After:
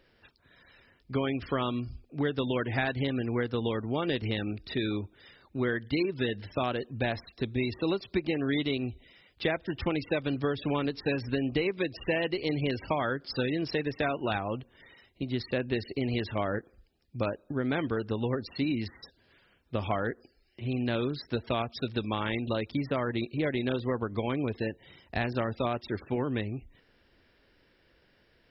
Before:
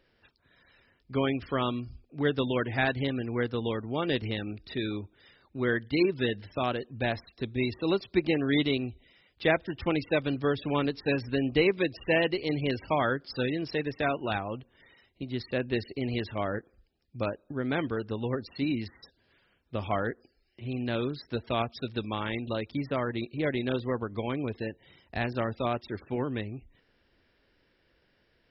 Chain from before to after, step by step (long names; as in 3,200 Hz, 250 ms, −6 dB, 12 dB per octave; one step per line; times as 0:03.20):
downward compressor, threshold −29 dBFS, peak gain reduction 10 dB
level +3.5 dB